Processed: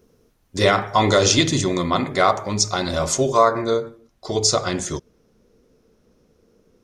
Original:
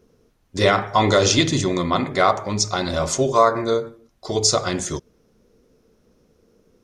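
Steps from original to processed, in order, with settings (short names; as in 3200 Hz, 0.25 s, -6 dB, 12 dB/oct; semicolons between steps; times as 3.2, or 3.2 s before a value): high shelf 9300 Hz +7.5 dB, from 3.37 s -2 dB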